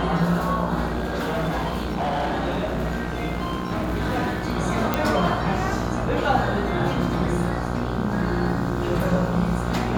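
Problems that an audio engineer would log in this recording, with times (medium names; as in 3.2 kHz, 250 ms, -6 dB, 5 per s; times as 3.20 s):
buzz 60 Hz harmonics 26 -28 dBFS
0.86–4.46 s: clipped -20.5 dBFS
4.94 s: pop -7 dBFS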